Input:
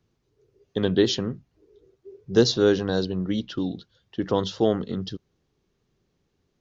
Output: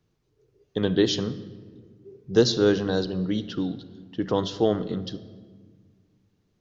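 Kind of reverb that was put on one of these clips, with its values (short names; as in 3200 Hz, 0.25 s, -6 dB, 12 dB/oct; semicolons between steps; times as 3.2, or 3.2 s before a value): shoebox room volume 1700 m³, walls mixed, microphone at 0.49 m; gain -1 dB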